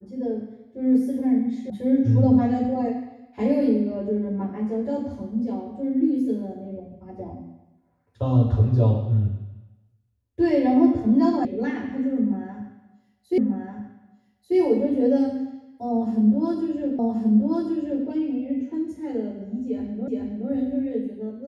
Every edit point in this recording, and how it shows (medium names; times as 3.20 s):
1.70 s: sound stops dead
11.45 s: sound stops dead
13.38 s: repeat of the last 1.19 s
16.99 s: repeat of the last 1.08 s
20.08 s: repeat of the last 0.42 s